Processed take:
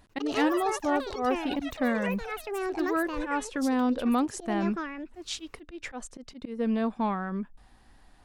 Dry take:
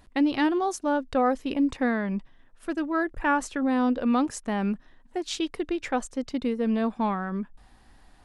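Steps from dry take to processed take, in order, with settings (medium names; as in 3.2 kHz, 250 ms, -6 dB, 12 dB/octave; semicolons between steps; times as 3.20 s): slow attack 146 ms; ever faster or slower copies 95 ms, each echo +7 st, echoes 3, each echo -6 dB; trim -2 dB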